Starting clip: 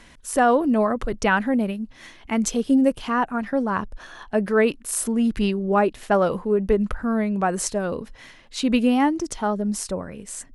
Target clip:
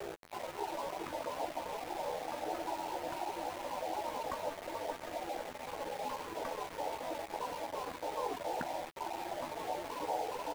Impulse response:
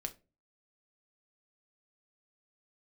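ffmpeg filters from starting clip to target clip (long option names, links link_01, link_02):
-filter_complex "[0:a]alimiter=limit=-16.5dB:level=0:latency=1:release=400,dynaudnorm=framelen=260:gausssize=7:maxgain=10.5dB,asuperpass=centerf=310:order=20:qfactor=1,aecho=1:1:424|848|1272:0.631|0.0946|0.0142,asplit=2[link_01][link_02];[1:a]atrim=start_sample=2205[link_03];[link_02][link_03]afir=irnorm=-1:irlink=0,volume=1.5dB[link_04];[link_01][link_04]amix=inputs=2:normalize=0,asetrate=78577,aresample=44100,atempo=0.561231,acompressor=threshold=-21dB:ratio=8,afftfilt=real='re*lt(hypot(re,im),0.0501)':imag='im*lt(hypot(re,im),0.0501)':win_size=1024:overlap=0.75,aeval=exprs='val(0)*gte(abs(val(0)),0.00237)':channel_layout=same,asplit=2[link_05][link_06];[link_06]adelay=12,volume=-9dB[link_07];[link_05][link_07]amix=inputs=2:normalize=0,volume=11dB"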